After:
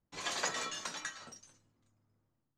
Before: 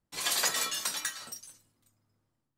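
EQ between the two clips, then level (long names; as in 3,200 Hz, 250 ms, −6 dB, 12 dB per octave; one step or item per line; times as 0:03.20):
head-to-tape spacing loss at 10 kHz 24 dB
parametric band 6,600 Hz +9.5 dB 0.4 octaves
0.0 dB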